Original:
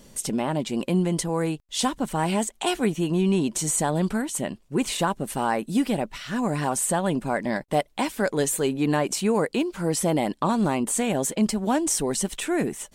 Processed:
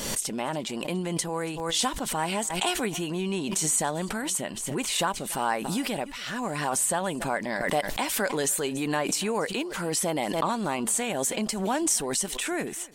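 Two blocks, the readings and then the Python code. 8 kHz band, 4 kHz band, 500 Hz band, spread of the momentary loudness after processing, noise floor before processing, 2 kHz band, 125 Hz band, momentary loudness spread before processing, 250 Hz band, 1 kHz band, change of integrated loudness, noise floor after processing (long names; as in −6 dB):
+1.0 dB, +2.0 dB, −4.0 dB, 6 LU, −55 dBFS, +1.0 dB, −7.5 dB, 4 LU, −7.0 dB, −2.0 dB, −2.5 dB, −36 dBFS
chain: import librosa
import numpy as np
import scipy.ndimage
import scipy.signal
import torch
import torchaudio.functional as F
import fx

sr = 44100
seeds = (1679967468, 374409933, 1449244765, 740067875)

p1 = fx.low_shelf(x, sr, hz=470.0, db=-11.0)
p2 = p1 + fx.echo_single(p1, sr, ms=283, db=-23.5, dry=0)
y = fx.pre_swell(p2, sr, db_per_s=39.0)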